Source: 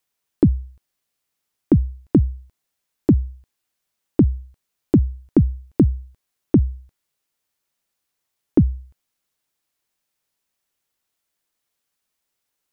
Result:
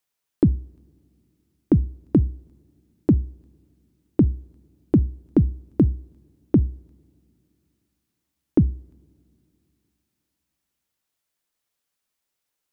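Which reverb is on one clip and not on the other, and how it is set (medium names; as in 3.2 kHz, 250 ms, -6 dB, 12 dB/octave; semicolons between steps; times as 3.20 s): two-slope reverb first 0.38 s, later 2.9 s, from -19 dB, DRR 20 dB; trim -2.5 dB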